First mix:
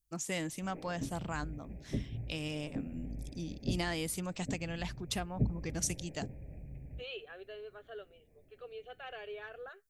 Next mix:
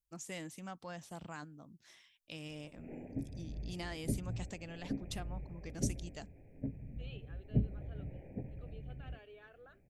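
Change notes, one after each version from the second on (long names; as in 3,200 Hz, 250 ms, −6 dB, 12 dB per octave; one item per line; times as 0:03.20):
first voice −8.0 dB
second voice −11.5 dB
background: entry +2.15 s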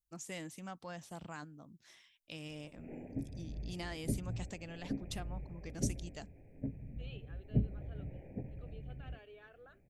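nothing changed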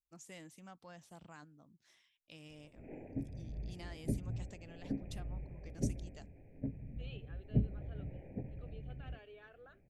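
first voice −8.0 dB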